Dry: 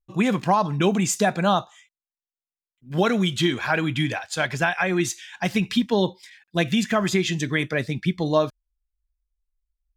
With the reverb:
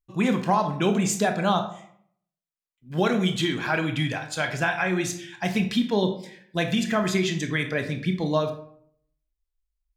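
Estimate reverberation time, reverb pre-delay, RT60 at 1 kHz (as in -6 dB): 0.65 s, 22 ms, 0.60 s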